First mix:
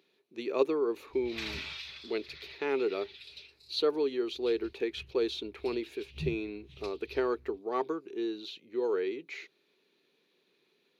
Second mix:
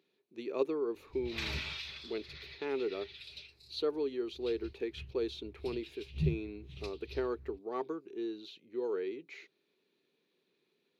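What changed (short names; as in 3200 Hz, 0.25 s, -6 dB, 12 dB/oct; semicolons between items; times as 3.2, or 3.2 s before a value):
speech -7.5 dB; master: add low shelf 390 Hz +6 dB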